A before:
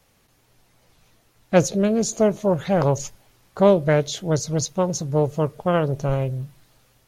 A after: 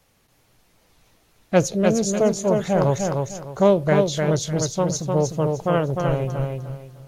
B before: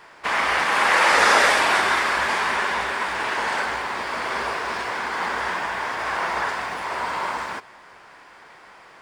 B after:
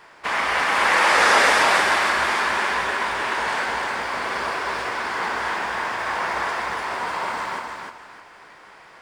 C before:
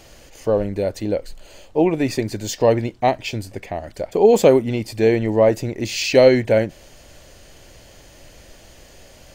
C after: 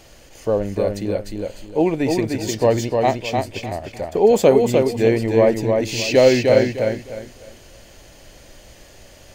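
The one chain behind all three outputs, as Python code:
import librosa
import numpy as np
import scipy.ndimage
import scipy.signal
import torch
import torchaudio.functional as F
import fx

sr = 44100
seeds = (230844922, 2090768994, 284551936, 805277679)

y = fx.echo_feedback(x, sr, ms=303, feedback_pct=27, wet_db=-4)
y = F.gain(torch.from_numpy(y), -1.0).numpy()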